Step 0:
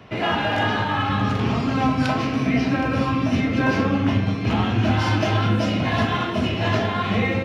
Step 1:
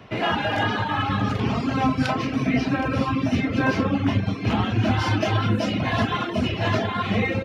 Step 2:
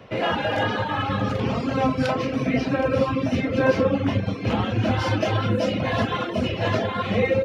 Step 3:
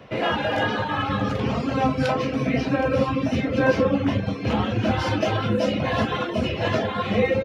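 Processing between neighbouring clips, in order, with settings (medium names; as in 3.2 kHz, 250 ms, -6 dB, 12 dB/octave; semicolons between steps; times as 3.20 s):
reverb removal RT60 0.67 s
peaking EQ 520 Hz +13 dB 0.24 oct; trim -1.5 dB
doubling 14 ms -10.5 dB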